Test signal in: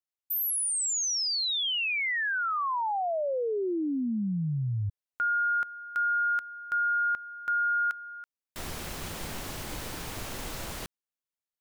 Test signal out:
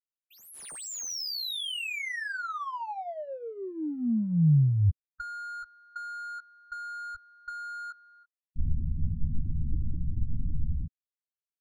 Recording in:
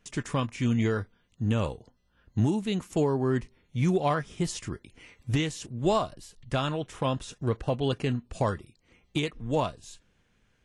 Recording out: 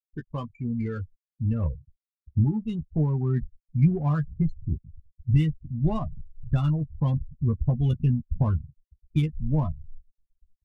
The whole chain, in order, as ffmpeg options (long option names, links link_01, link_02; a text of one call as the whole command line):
ffmpeg -i in.wav -filter_complex "[0:a]asubboost=boost=11:cutoff=140,afftfilt=real='re*gte(hypot(re,im),0.0562)':imag='im*gte(hypot(re,im),0.0562)':win_size=1024:overlap=0.75,adynamicsmooth=sensitivity=7.5:basefreq=2300,asplit=2[link_01][link_02];[link_02]adelay=13,volume=-6dB[link_03];[link_01][link_03]amix=inputs=2:normalize=0,volume=-5.5dB" out.wav